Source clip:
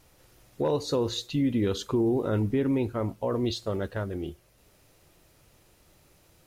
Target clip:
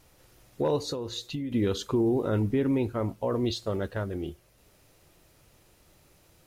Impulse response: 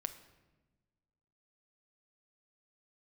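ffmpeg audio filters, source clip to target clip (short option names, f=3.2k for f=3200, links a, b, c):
-filter_complex "[0:a]asettb=1/sr,asplit=3[a][b][c];[a]atrim=end=0.894[d];[b]atrim=start=0.89:end=1.52,asetpts=PTS-STARTPTS,afade=t=in:d=0.004:c=qsin,afade=t=out:st=0.626:d=0.004:c=qsin,acompressor=threshold=-31dB:ratio=6[e];[c]atrim=start=1.516[f];[d][e]acrossfade=d=0.004:c1=hsin:c2=qsin[g];[g][f]acrossfade=d=0.004:c1=qsin:c2=hsin"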